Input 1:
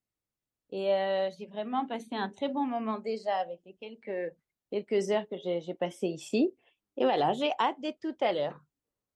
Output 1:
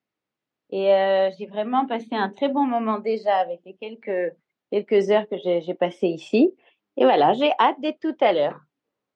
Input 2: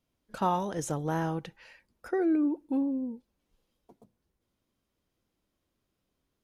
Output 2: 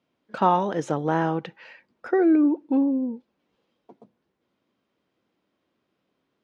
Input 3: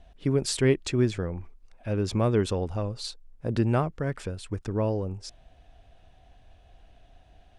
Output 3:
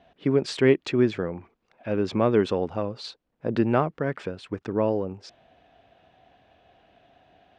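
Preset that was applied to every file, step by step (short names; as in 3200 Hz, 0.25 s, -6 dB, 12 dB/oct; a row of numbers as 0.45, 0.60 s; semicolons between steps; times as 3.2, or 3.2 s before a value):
BPF 190–3300 Hz; normalise peaks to -6 dBFS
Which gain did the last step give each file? +10.0, +8.0, +4.5 dB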